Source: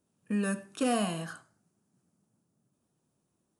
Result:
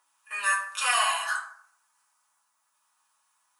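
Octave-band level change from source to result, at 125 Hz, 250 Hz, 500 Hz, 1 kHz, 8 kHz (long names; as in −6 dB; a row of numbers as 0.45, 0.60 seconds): below −40 dB, below −40 dB, −8.0 dB, +10.0 dB, +10.5 dB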